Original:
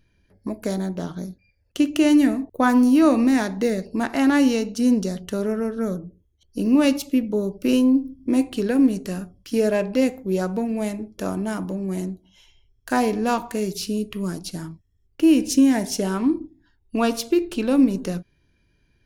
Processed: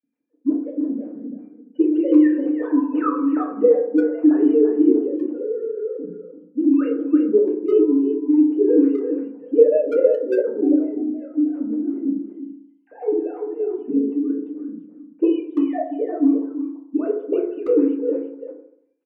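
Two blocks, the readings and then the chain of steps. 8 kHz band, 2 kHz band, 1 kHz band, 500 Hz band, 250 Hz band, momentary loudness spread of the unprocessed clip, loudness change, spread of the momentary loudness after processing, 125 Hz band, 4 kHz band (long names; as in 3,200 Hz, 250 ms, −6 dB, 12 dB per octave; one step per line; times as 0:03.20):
below −35 dB, below −10 dB, −6.0 dB, +6.0 dB, +1.0 dB, 14 LU, +2.0 dB, 15 LU, below −15 dB, below −20 dB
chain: three sine waves on the formant tracks
envelope filter 240–1,500 Hz, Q 3.4, up, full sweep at −11 dBFS
rotating-speaker cabinet horn 5.5 Hz
far-end echo of a speakerphone 340 ms, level −7 dB
feedback delay network reverb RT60 0.7 s, low-frequency decay 1×, high-frequency decay 0.25×, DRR −2.5 dB
level +7.5 dB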